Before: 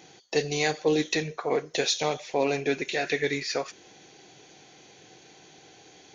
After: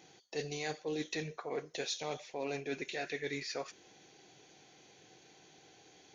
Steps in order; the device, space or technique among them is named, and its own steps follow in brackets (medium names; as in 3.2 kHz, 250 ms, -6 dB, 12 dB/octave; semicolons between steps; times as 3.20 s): compression on the reversed sound (reverse; compression, threshold -26 dBFS, peak gain reduction 8 dB; reverse); trim -8 dB